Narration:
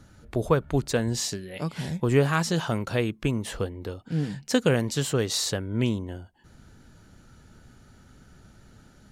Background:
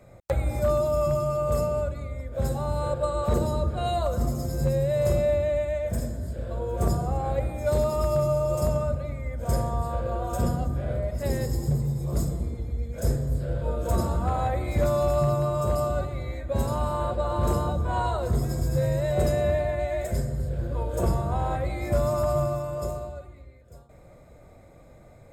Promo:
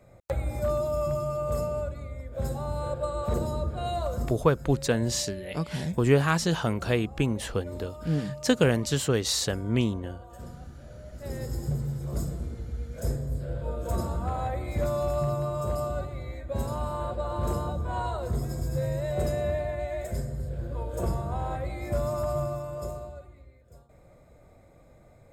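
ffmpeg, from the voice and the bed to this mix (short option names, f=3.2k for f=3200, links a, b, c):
-filter_complex "[0:a]adelay=3950,volume=0dB[a];[1:a]volume=9dB,afade=t=out:st=4.18:d=0.26:silence=0.211349,afade=t=in:st=11.04:d=0.55:silence=0.223872[b];[a][b]amix=inputs=2:normalize=0"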